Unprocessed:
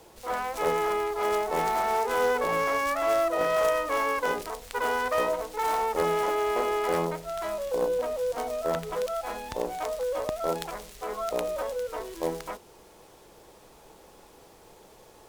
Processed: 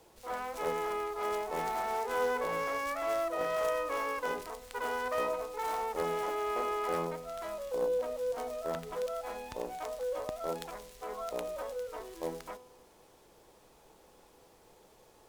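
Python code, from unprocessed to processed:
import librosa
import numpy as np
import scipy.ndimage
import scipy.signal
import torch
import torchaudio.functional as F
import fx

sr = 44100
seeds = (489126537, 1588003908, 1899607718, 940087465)

y = fx.comb_fb(x, sr, f0_hz=250.0, decay_s=1.3, harmonics='all', damping=0.0, mix_pct=60)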